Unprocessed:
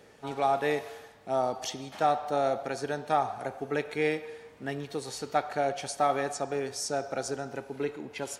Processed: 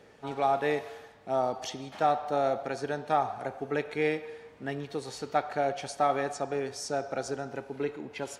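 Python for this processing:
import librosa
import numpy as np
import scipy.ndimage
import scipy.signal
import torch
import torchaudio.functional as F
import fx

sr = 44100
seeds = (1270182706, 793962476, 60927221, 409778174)

y = fx.high_shelf(x, sr, hz=7000.0, db=-9.5)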